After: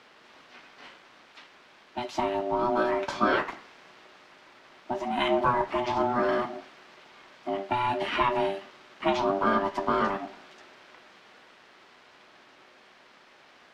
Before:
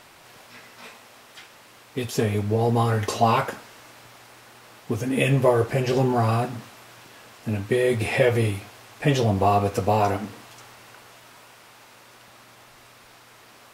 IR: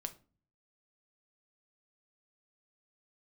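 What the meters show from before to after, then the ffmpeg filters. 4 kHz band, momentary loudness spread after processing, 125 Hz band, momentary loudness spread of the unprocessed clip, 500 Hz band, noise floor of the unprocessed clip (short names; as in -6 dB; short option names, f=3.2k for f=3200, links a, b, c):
-2.5 dB, 12 LU, -20.0 dB, 12 LU, -5.5 dB, -51 dBFS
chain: -filter_complex "[0:a]aeval=exprs='val(0)*sin(2*PI*490*n/s)':c=same,acrossover=split=190 5300:gain=0.141 1 0.0631[a][b][c];[a][b][c]amix=inputs=3:normalize=0,volume=-1dB"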